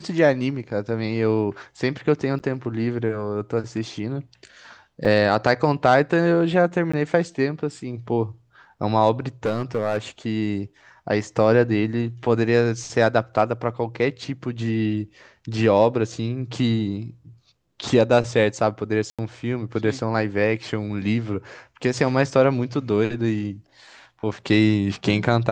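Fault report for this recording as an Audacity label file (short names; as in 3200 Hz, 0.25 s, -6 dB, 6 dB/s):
2.390000	2.400000	gap 8.4 ms
5.050000	5.050000	gap 4.6 ms
6.920000	6.930000	gap 15 ms
9.450000	9.980000	clipped -17.5 dBFS
19.100000	19.190000	gap 86 ms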